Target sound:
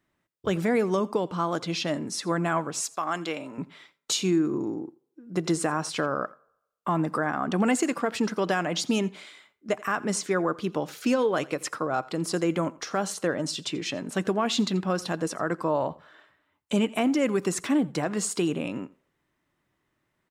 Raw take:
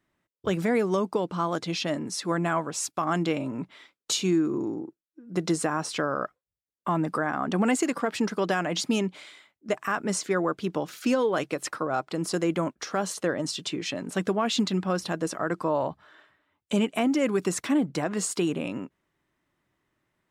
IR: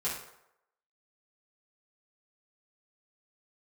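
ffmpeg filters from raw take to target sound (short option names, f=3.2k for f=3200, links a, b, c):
-filter_complex "[0:a]asettb=1/sr,asplit=3[a][b][c];[a]atrim=end=2.834[d];[b]atrim=start=2.83:end=3.58,asetpts=PTS-STARTPTS,afade=t=in:d=0.004:c=qsin,afade=t=out:st=0.746:d=0.004:c=qsin,highpass=f=660:p=1[e];[c]atrim=start=3.576[f];[d][e]acrossfade=d=0.004:c1=hsin:c2=qsin[g];[g][f]acrossfade=d=0.004:c1=qsin:c2=hsin,aecho=1:1:85:0.0841,asplit=2[h][i];[1:a]atrim=start_sample=2205[j];[i][j]afir=irnorm=-1:irlink=0,volume=-26.5dB[k];[h][k]amix=inputs=2:normalize=0"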